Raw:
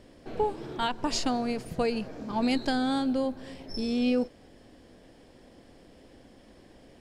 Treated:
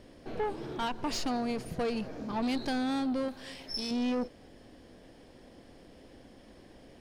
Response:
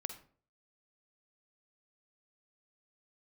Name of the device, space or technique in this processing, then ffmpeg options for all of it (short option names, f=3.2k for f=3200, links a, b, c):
saturation between pre-emphasis and de-emphasis: -filter_complex "[0:a]highshelf=f=7k:g=10,asoftclip=type=tanh:threshold=-27dB,highshelf=f=7k:g=-10,asettb=1/sr,asplit=3[a][b][c];[a]atrim=end=3.284[d];[b]atrim=start=3.28:end=3.91,asetpts=PTS-STARTPTS,afade=t=in:d=0.004:c=qsin,afade=t=out:st=0.626:d=0.004:c=qsin,tiltshelf=f=970:g=-7[e];[c]atrim=start=3.906[f];[d][e]acrossfade=d=0.004:c1=hsin:c2=qsin[g];[g][f]acrossfade=d=0.004:c1=qsin:c2=hsin,bandreject=f=7.6k:w=11"